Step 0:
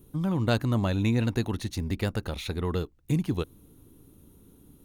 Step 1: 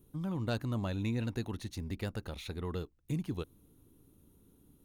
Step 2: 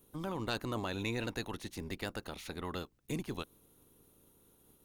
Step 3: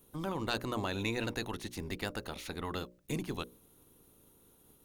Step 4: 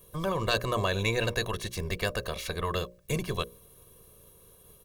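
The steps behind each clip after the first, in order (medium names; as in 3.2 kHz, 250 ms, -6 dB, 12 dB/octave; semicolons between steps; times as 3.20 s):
saturation -11.5 dBFS, distortion -27 dB; trim -8.5 dB
spectral peaks clipped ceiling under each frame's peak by 16 dB; trim -2.5 dB
hum notches 60/120/180/240/300/360/420/480/540/600 Hz; trim +2.5 dB
comb 1.8 ms, depth 81%; trim +5.5 dB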